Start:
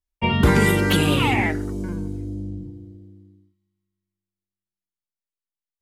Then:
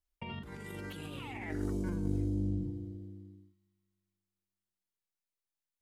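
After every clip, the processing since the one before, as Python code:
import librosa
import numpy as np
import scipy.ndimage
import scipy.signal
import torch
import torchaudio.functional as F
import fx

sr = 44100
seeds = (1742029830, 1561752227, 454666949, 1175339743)

y = fx.over_compress(x, sr, threshold_db=-30.0, ratio=-1.0)
y = F.gain(torch.from_numpy(y), -8.5).numpy()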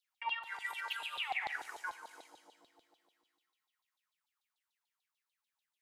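y = scipy.signal.sosfilt(scipy.signal.cheby1(2, 1.0, 630.0, 'highpass', fs=sr, output='sos'), x)
y = fx.filter_lfo_highpass(y, sr, shape='saw_down', hz=6.8, low_hz=750.0, high_hz=4000.0, q=7.8)
y = fx.rev_schroeder(y, sr, rt60_s=1.4, comb_ms=25, drr_db=15.0)
y = F.gain(torch.from_numpy(y), 1.0).numpy()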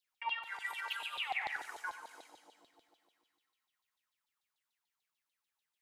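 y = x + 10.0 ** (-14.0 / 20.0) * np.pad(x, (int(93 * sr / 1000.0), 0))[:len(x)]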